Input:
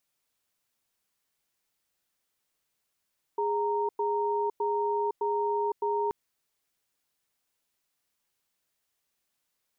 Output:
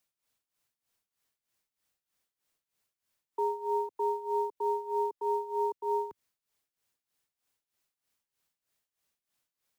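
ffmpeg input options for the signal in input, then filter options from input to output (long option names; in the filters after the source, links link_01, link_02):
-f lavfi -i "aevalsrc='0.0398*(sin(2*PI*413*t)+sin(2*PI*928*t))*clip(min(mod(t,0.61),0.51-mod(t,0.61))/0.005,0,1)':duration=2.73:sample_rate=44100"
-filter_complex "[0:a]equalizer=frequency=100:width=1.5:gain=2.5,tremolo=f=3.2:d=0.81,acrossover=split=140|290|520[link_01][link_02][link_03][link_04];[link_03]acrusher=bits=6:mode=log:mix=0:aa=0.000001[link_05];[link_01][link_02][link_05][link_04]amix=inputs=4:normalize=0"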